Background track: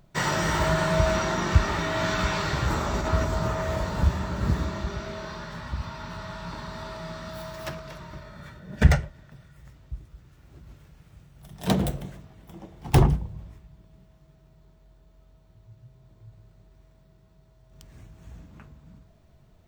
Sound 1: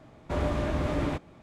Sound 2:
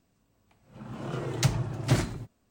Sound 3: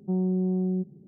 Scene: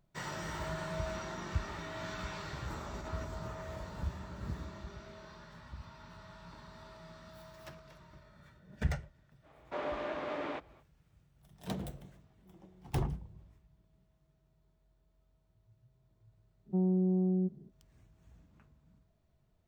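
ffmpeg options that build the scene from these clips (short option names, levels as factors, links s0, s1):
-filter_complex "[3:a]asplit=2[s0][s1];[0:a]volume=0.168[s2];[1:a]highpass=440,lowpass=3700[s3];[s0]acompressor=threshold=0.00708:ratio=6:attack=3.2:release=140:knee=1:detection=peak[s4];[s3]atrim=end=1.42,asetpts=PTS-STARTPTS,volume=0.631,afade=t=in:d=0.05,afade=t=out:st=1.37:d=0.05,adelay=9420[s5];[s4]atrim=end=1.07,asetpts=PTS-STARTPTS,volume=0.133,afade=t=in:d=0.004:c=hsin,afade=t=out:st=1.066:d=0.004:c=hsin,adelay=12380[s6];[s1]atrim=end=1.07,asetpts=PTS-STARTPTS,volume=0.668,afade=t=in:d=0.05,afade=t=out:st=1.02:d=0.05,adelay=16650[s7];[s2][s5][s6][s7]amix=inputs=4:normalize=0"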